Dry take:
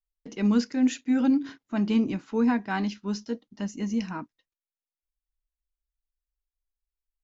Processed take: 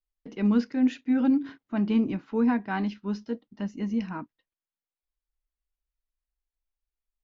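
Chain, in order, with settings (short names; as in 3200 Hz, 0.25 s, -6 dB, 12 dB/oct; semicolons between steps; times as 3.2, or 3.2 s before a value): air absorption 210 m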